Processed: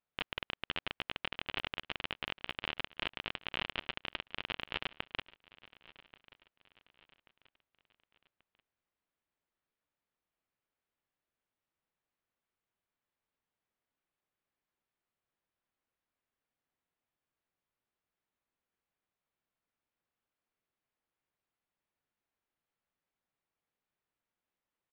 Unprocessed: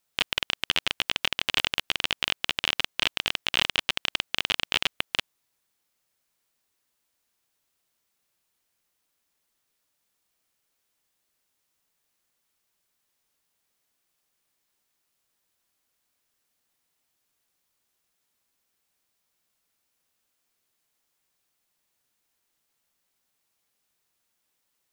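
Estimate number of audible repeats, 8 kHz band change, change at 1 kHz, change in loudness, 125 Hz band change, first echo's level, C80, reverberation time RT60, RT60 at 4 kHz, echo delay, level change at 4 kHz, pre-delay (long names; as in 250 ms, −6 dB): 2, below −30 dB, −8.5 dB, −13.0 dB, −6.5 dB, −20.5 dB, no reverb audible, no reverb audible, no reverb audible, 1,134 ms, −15.0 dB, no reverb audible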